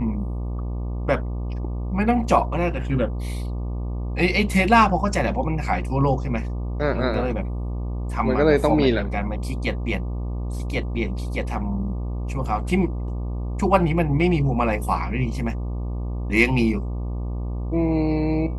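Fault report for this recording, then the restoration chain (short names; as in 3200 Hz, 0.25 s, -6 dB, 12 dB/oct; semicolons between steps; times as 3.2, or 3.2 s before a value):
buzz 60 Hz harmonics 20 -27 dBFS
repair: de-hum 60 Hz, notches 20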